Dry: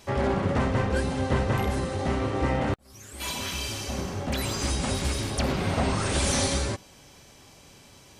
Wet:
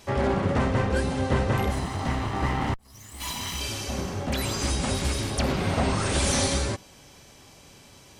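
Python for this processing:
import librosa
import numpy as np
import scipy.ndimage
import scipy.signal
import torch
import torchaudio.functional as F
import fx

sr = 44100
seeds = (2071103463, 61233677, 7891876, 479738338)

y = fx.lower_of_two(x, sr, delay_ms=1.0, at=(1.71, 3.61))
y = y * librosa.db_to_amplitude(1.0)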